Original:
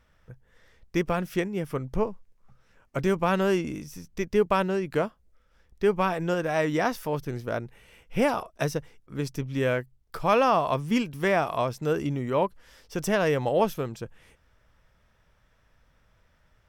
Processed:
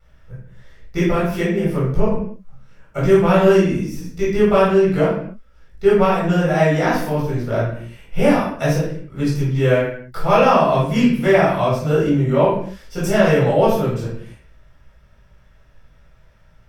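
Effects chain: vibrato 0.51 Hz 6.9 cents; reverberation, pre-delay 12 ms, DRR -8 dB; trim -3.5 dB

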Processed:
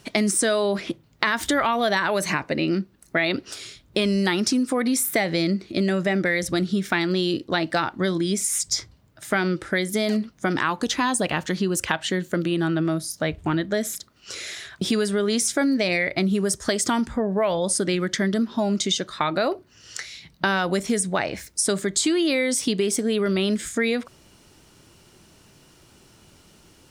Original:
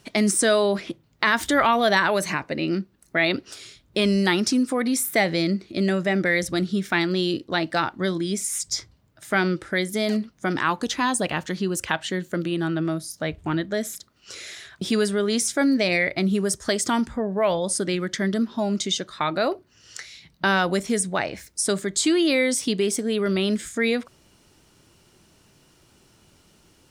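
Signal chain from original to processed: compression 4:1, threshold -23 dBFS, peak gain reduction 8 dB; trim +4 dB

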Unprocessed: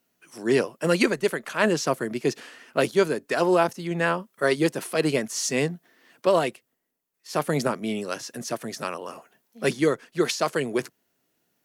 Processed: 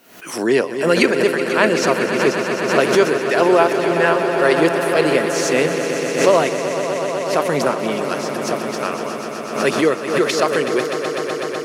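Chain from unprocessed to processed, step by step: tone controls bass -8 dB, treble -5 dB; on a send: echo with a slow build-up 125 ms, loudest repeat 5, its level -11 dB; on the sum: swell ahead of each attack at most 81 dB/s; trim +6.5 dB

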